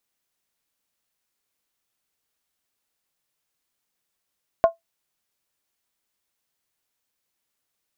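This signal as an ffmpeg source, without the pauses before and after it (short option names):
-f lavfi -i "aevalsrc='0.422*pow(10,-3*t/0.14)*sin(2*PI*667*t)+0.119*pow(10,-3*t/0.111)*sin(2*PI*1063.2*t)+0.0335*pow(10,-3*t/0.096)*sin(2*PI*1424.7*t)+0.00944*pow(10,-3*t/0.092)*sin(2*PI*1531.4*t)+0.00266*pow(10,-3*t/0.086)*sin(2*PI*1769.6*t)':d=0.63:s=44100"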